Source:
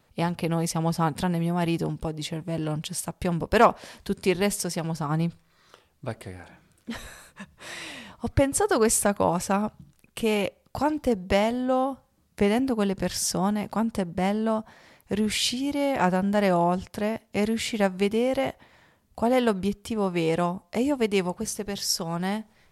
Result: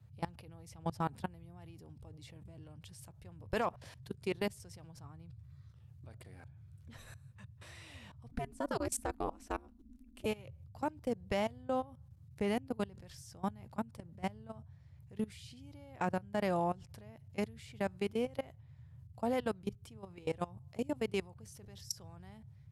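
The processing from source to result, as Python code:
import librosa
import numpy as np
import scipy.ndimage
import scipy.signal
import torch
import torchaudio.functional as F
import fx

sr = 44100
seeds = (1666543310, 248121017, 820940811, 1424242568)

y = fx.level_steps(x, sr, step_db=23)
y = fx.dmg_noise_band(y, sr, seeds[0], low_hz=73.0, high_hz=140.0, level_db=-46.0)
y = fx.ring_mod(y, sr, carrier_hz=140.0, at=(8.32, 10.26))
y = y * 10.0 ** (-9.0 / 20.0)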